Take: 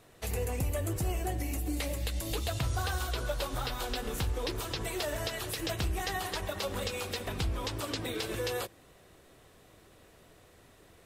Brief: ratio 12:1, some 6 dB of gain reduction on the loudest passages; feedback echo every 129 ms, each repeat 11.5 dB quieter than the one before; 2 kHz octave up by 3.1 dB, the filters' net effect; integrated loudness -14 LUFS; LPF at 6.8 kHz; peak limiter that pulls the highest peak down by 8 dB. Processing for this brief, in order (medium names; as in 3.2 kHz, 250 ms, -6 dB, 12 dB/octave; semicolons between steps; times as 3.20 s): low-pass 6.8 kHz; peaking EQ 2 kHz +4 dB; compression 12:1, threshold -33 dBFS; peak limiter -31.5 dBFS; feedback delay 129 ms, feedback 27%, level -11.5 dB; trim +26 dB